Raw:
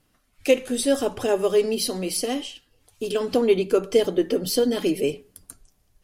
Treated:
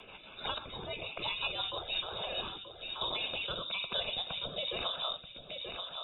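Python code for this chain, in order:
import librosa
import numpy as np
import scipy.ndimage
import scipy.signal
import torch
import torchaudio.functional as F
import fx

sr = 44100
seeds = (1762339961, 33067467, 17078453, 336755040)

p1 = fx.spec_gate(x, sr, threshold_db=-15, keep='weak')
p2 = fx.low_shelf(p1, sr, hz=160.0, db=7.5)
p3 = fx.over_compress(p2, sr, threshold_db=-40.0, ratio=-0.5)
p4 = p2 + F.gain(torch.from_numpy(p3), -1.0).numpy()
p5 = fx.fixed_phaser(p4, sr, hz=1800.0, stages=6)
p6 = fx.freq_invert(p5, sr, carrier_hz=3700)
p7 = fx.air_absorb(p6, sr, metres=500.0, at=(0.58, 1.19))
p8 = p7 + fx.echo_feedback(p7, sr, ms=932, feedback_pct=22, wet_db=-13.0, dry=0)
p9 = fx.rotary_switch(p8, sr, hz=6.0, then_hz=1.1, switch_at_s=1.81)
y = fx.band_squash(p9, sr, depth_pct=70)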